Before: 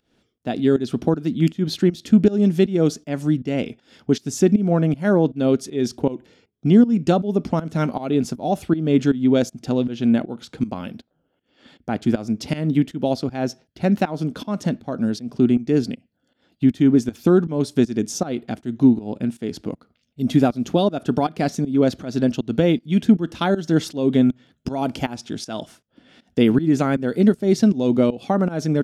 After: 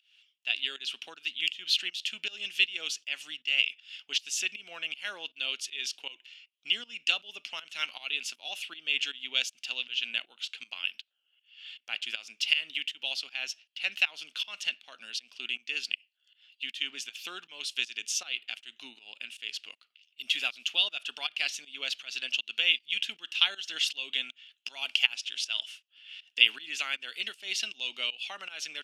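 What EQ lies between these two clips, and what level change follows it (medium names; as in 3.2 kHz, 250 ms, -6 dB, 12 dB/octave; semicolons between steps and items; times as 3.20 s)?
resonant high-pass 2.8 kHz, resonance Q 7.4; treble shelf 8.7 kHz -6.5 dB; -1.0 dB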